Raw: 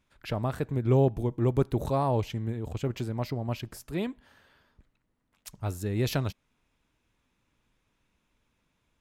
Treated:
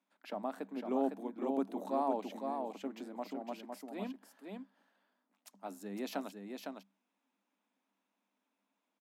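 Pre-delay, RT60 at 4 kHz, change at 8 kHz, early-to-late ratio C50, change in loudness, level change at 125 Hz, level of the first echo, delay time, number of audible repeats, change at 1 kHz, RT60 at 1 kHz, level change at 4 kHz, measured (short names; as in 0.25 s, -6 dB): none, none, -11.0 dB, none, -10.0 dB, under -30 dB, -5.0 dB, 0.507 s, 1, -4.0 dB, none, -11.0 dB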